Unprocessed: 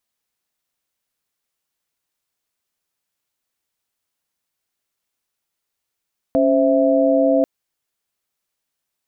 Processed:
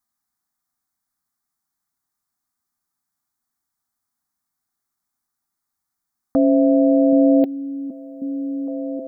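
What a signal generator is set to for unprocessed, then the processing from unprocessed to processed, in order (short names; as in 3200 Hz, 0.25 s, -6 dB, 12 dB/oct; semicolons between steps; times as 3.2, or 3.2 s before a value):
chord C#4/C5/E5 sine, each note -17 dBFS 1.09 s
envelope phaser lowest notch 480 Hz, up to 1200 Hz, full sweep at -23.5 dBFS; small resonant body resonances 250/370/760/1200 Hz, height 7 dB, ringing for 45 ms; on a send: delay with a stepping band-pass 0.775 s, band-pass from 180 Hz, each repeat 0.7 oct, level -6 dB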